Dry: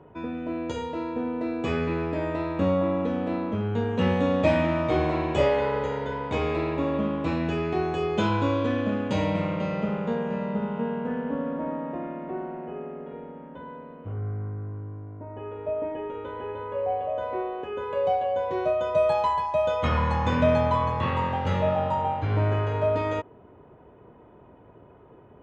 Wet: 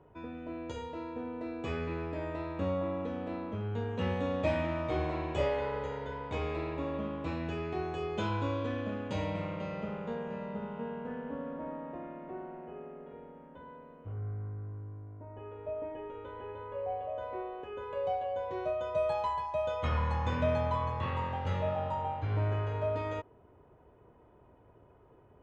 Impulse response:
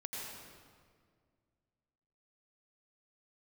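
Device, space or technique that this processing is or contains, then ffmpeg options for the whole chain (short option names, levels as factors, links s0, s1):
low shelf boost with a cut just above: -af "lowshelf=f=91:g=7.5,equalizer=f=200:t=o:w=1.2:g=-4.5,volume=0.376"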